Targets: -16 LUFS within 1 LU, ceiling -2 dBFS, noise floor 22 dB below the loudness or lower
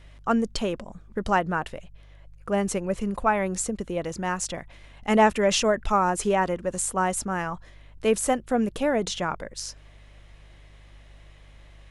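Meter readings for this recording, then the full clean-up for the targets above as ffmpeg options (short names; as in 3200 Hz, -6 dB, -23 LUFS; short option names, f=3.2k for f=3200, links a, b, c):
hum 50 Hz; harmonics up to 150 Hz; hum level -47 dBFS; loudness -25.5 LUFS; peak -8.0 dBFS; loudness target -16.0 LUFS
-> -af "bandreject=f=50:t=h:w=4,bandreject=f=100:t=h:w=4,bandreject=f=150:t=h:w=4"
-af "volume=9.5dB,alimiter=limit=-2dB:level=0:latency=1"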